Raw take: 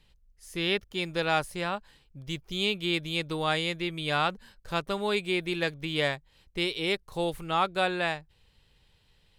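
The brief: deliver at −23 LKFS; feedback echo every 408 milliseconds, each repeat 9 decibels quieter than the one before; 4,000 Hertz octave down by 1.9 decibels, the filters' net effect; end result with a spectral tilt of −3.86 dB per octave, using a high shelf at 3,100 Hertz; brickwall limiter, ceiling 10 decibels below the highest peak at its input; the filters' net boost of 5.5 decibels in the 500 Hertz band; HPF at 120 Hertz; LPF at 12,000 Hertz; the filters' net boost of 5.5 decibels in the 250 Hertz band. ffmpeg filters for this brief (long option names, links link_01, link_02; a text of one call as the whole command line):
ffmpeg -i in.wav -af "highpass=120,lowpass=12000,equalizer=frequency=250:width_type=o:gain=7.5,equalizer=frequency=500:width_type=o:gain=4.5,highshelf=frequency=3100:gain=5,equalizer=frequency=4000:width_type=o:gain=-6,alimiter=limit=-21dB:level=0:latency=1,aecho=1:1:408|816|1224|1632:0.355|0.124|0.0435|0.0152,volume=8.5dB" out.wav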